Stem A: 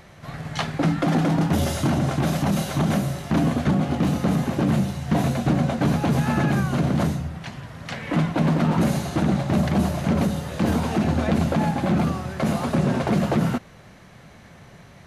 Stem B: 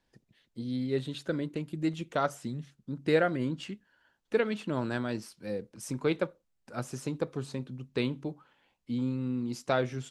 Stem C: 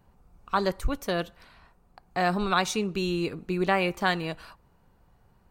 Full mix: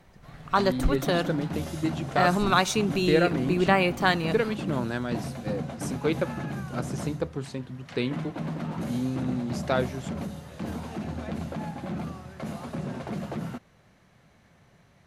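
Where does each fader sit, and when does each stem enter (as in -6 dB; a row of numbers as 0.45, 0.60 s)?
-12.5, +2.0, +2.5 dB; 0.00, 0.00, 0.00 s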